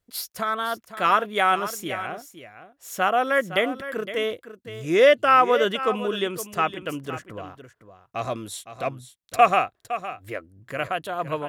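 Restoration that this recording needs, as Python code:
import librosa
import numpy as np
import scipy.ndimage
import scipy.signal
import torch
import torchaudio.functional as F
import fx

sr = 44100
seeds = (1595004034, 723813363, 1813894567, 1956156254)

y = fx.fix_echo_inverse(x, sr, delay_ms=512, level_db=-12.5)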